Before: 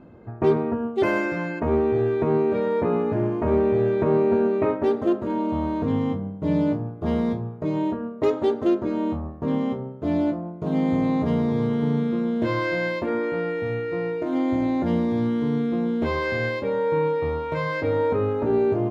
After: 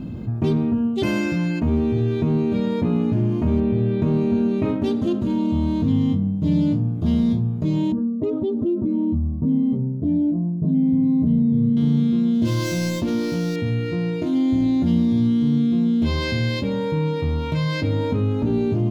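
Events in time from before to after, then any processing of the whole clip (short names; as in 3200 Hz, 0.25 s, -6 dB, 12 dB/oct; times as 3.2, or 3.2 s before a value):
3.6–4.02 air absorption 220 m
7.92–11.77 spectral contrast raised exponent 1.6
12.34–13.56 median filter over 15 samples
whole clip: band shelf 880 Hz -15.5 dB 2.9 oct; fast leveller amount 50%; gain +5 dB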